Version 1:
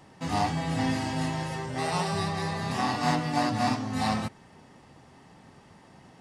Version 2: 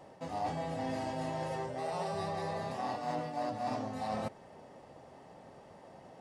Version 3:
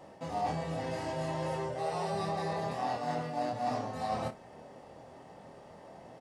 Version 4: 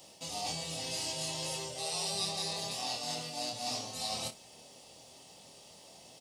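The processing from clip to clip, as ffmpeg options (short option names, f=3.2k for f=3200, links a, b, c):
-af "equalizer=f=580:t=o:w=1.1:g=14.5,areverse,acompressor=threshold=-27dB:ratio=6,areverse,volume=-6.5dB"
-af "aecho=1:1:25|59:0.596|0.158,volume=1dB"
-af "aexciter=amount=13.8:drive=3.1:freq=2.6k,volume=-8dB"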